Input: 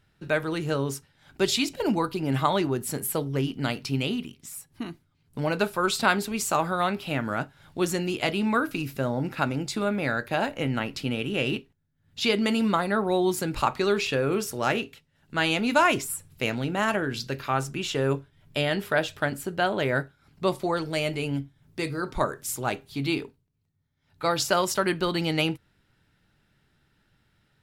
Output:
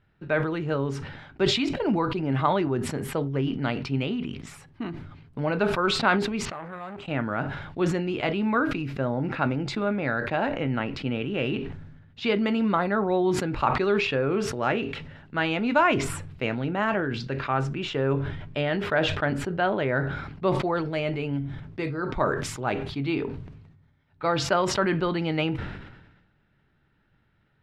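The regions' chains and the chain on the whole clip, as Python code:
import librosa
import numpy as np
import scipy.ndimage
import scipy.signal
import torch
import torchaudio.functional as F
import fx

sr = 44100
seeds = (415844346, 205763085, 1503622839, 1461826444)

y = fx.chain(x, sr, fx.level_steps(step_db=17),
    fx.resample_bad(factor=4, down='filtered', up='hold'),
    fx.transformer_sat(knee_hz=1500.0), at=(6.45, 7.08))
y = scipy.signal.sosfilt(scipy.signal.butter(2, 2400.0, 'lowpass', fs=sr, output='sos'), y)
y = fx.sustainer(y, sr, db_per_s=50.0)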